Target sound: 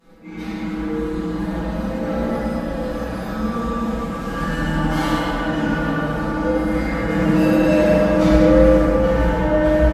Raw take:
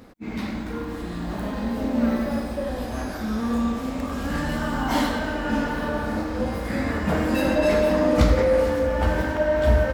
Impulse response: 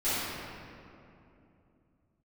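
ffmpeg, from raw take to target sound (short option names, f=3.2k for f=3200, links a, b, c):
-filter_complex "[0:a]aecho=1:1:6.1:0.93[a];[1:a]atrim=start_sample=2205,asetrate=28224,aresample=44100[b];[a][b]afir=irnorm=-1:irlink=0,volume=-13.5dB"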